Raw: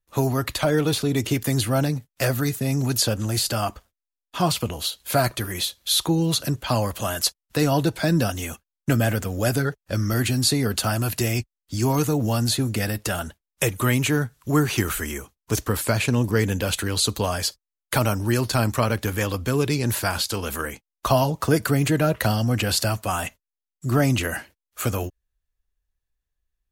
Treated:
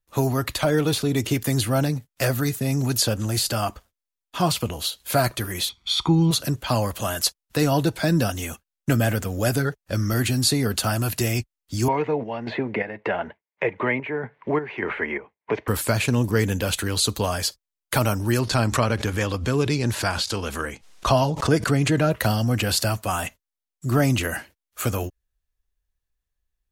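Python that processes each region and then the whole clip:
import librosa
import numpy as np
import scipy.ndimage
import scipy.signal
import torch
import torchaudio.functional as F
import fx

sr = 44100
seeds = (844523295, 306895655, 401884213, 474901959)

y = fx.chain(x, sr, fx.lowpass(hz=3800.0, slope=12),
    fx.comb(ms=0.9, depth=0.86), at=(5.69, 6.31))
y = fx.chain(y, sr, fx.chopper(hz=1.7, depth_pct=60, duty_pct=60),
    fx.cabinet(low_hz=240.0, low_slope=12, high_hz=2400.0, hz=(290.0, 440.0, 630.0, 930.0, 1300.0, 2100.0), db=(-4, 5, 3, 7, -7, 9)),
    fx.band_squash(depth_pct=70), at=(11.88, 15.68))
y = fx.chain(y, sr, fx.lowpass(hz=7700.0, slope=12),
    fx.pre_swell(db_per_s=120.0), at=(18.39, 22.11))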